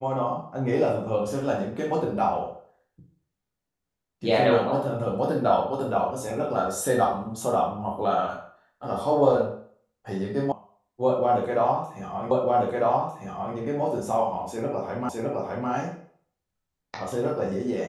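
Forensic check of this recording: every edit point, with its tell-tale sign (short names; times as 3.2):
10.52 sound cut off
12.31 repeat of the last 1.25 s
15.09 repeat of the last 0.61 s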